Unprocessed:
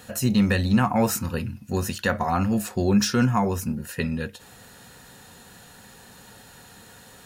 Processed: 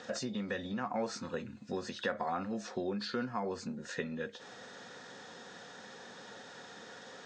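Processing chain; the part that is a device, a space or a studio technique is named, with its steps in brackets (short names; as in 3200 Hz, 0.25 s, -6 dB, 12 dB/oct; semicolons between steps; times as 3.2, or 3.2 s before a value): hearing aid with frequency lowering (nonlinear frequency compression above 2900 Hz 1.5:1; compressor 4:1, threshold -33 dBFS, peak gain reduction 15 dB; speaker cabinet 270–5700 Hz, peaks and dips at 510 Hz +3 dB, 920 Hz -3 dB, 2700 Hz -7 dB, 5200 Hz -4 dB); gain +1 dB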